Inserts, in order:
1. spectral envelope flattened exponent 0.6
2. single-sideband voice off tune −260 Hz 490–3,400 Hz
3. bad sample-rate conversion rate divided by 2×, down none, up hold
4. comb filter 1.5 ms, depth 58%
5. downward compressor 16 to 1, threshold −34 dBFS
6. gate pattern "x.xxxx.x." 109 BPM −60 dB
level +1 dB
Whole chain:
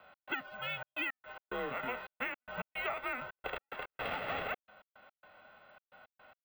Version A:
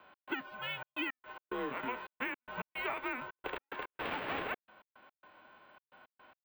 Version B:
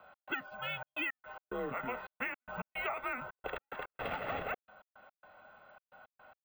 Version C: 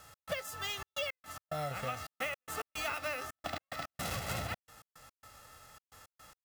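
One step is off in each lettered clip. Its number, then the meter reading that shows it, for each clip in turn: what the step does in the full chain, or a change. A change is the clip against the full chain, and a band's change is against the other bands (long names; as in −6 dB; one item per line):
4, 250 Hz band +6.0 dB
1, 4 kHz band −2.5 dB
2, 125 Hz band +10.5 dB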